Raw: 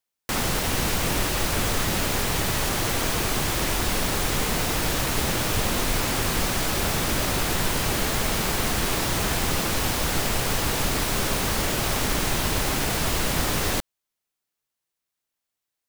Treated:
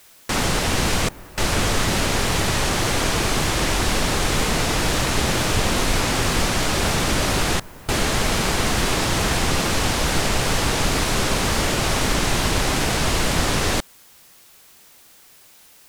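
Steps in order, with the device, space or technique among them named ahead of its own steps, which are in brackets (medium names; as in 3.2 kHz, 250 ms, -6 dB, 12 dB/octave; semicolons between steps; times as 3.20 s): worn cassette (low-pass 9.3 kHz 12 dB/octave; wow and flutter; level dips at 1.09/7.60 s, 284 ms -20 dB; white noise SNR 29 dB); trim +4.5 dB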